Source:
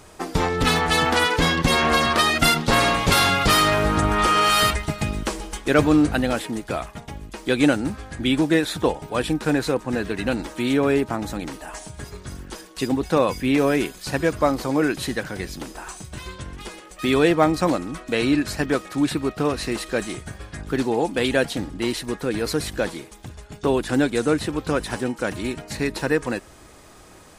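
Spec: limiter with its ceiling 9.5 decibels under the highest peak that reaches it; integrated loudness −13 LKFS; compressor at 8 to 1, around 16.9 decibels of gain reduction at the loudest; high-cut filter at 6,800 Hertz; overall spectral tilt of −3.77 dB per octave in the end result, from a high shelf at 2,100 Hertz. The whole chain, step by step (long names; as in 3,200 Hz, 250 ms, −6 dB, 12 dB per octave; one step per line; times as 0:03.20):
low-pass filter 6,800 Hz
high-shelf EQ 2,100 Hz +7.5 dB
downward compressor 8 to 1, threshold −29 dBFS
level +21.5 dB
brickwall limiter −2 dBFS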